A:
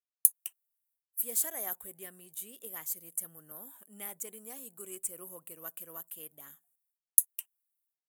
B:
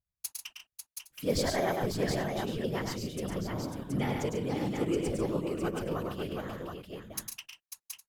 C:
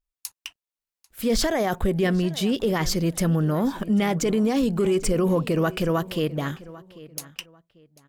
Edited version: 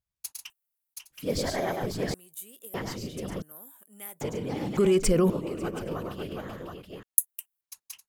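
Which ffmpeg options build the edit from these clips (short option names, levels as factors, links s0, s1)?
-filter_complex "[0:a]asplit=4[s0][s1][s2][s3];[1:a]asplit=6[s4][s5][s6][s7][s8][s9];[s4]atrim=end=0.502[s10];[s0]atrim=start=0.498:end=0.942[s11];[s5]atrim=start=0.938:end=2.142[s12];[s1]atrim=start=2.138:end=2.742[s13];[s6]atrim=start=2.738:end=3.422[s14];[s2]atrim=start=3.418:end=4.212[s15];[s7]atrim=start=4.208:end=4.772[s16];[2:a]atrim=start=4.768:end=5.302[s17];[s8]atrim=start=5.298:end=7.032[s18];[s3]atrim=start=7.028:end=7.612[s19];[s9]atrim=start=7.608[s20];[s10][s11]acrossfade=d=0.004:c1=hsin:c2=hsin[s21];[s21][s12]acrossfade=d=0.004:c1=hsin:c2=hsin[s22];[s22][s13]acrossfade=d=0.004:c1=hsin:c2=hsin[s23];[s23][s14]acrossfade=d=0.004:c1=hsin:c2=hsin[s24];[s24][s15]acrossfade=d=0.004:c1=hsin:c2=hsin[s25];[s25][s16]acrossfade=d=0.004:c1=hsin:c2=hsin[s26];[s26][s17]acrossfade=d=0.004:c1=hsin:c2=hsin[s27];[s27][s18]acrossfade=d=0.004:c1=hsin:c2=hsin[s28];[s28][s19]acrossfade=d=0.004:c1=hsin:c2=hsin[s29];[s29][s20]acrossfade=d=0.004:c1=hsin:c2=hsin"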